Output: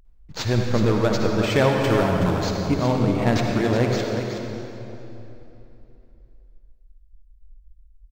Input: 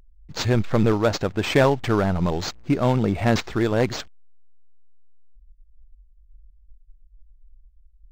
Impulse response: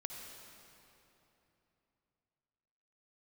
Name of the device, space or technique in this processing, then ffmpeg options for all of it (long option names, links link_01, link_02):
cave: -filter_complex "[0:a]asettb=1/sr,asplit=3[link_01][link_02][link_03];[link_01]atrim=end=1.774[link_04];[link_02]atrim=start=1.77:end=2.4,asetpts=PTS-STARTPTS,afade=type=in:duration=0.004:curve=qsin,afade=type=out:start_time=0.626:duration=0.004:curve=qsin,highshelf=frequency=7900:gain=9[link_05];[link_03]atrim=start=2.396[link_06];[link_04][link_05]acrossfade=duration=0.004:curve1=hsin:curve2=qsin[link_07];[link_07][link_06]acrossfade=duration=0.004:curve1=qsin:curve2=hsin,aecho=1:1:372:0.376[link_08];[1:a]atrim=start_sample=2205[link_09];[link_08][link_09]afir=irnorm=-1:irlink=0,volume=1.5dB"